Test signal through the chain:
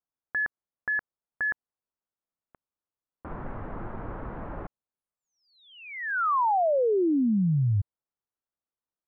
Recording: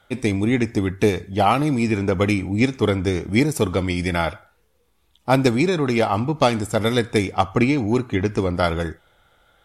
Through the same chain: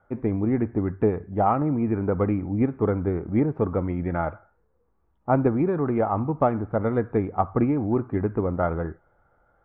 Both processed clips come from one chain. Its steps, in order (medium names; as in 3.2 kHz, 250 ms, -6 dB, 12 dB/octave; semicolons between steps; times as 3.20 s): inverse Chebyshev low-pass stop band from 7.6 kHz, stop band 80 dB; trim -3.5 dB